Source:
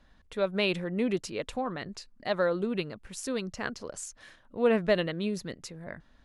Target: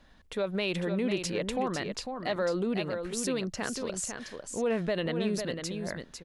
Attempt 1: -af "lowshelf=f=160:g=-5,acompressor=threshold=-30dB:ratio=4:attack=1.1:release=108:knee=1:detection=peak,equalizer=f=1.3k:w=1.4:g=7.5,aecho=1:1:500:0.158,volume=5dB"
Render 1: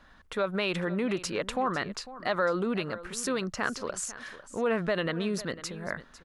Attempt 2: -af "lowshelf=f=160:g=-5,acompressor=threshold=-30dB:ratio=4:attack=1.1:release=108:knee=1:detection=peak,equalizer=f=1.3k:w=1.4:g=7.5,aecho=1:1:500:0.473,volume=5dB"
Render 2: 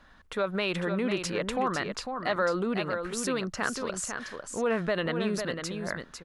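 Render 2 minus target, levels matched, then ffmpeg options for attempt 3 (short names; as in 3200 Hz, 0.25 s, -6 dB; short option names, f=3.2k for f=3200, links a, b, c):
1000 Hz band +4.0 dB
-af "lowshelf=f=160:g=-5,acompressor=threshold=-30dB:ratio=4:attack=1.1:release=108:knee=1:detection=peak,equalizer=f=1.3k:w=1.4:g=-2.5,aecho=1:1:500:0.473,volume=5dB"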